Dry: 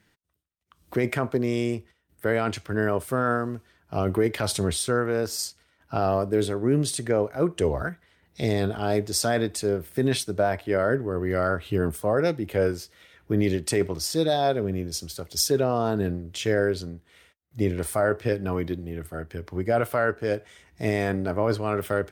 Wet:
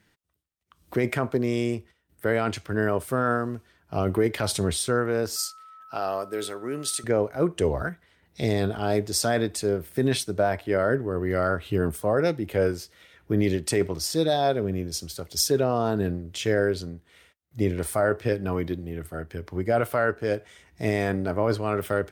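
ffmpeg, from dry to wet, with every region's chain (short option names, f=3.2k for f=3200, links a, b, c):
-filter_complex "[0:a]asettb=1/sr,asplit=3[a][b][c];[a]atrim=end=5.364[d];[b]atrim=start=5.36:end=7.04,asetpts=PTS-STARTPTS,afade=t=in:d=0.004:c=qsin,afade=t=out:st=1.676:d=0.004:c=qsin,highpass=f=880:p=1,highshelf=f=11k:g=5.5,aeval=exprs='val(0)+0.00562*sin(2*PI*1300*n/s)':c=same[e];[c]atrim=start=7.036[f];[d][e]acrossfade=d=0.004:c1=hsin:c2=qsin[g];[g][f]acrossfade=d=0.004:c1=qsin:c2=hsin"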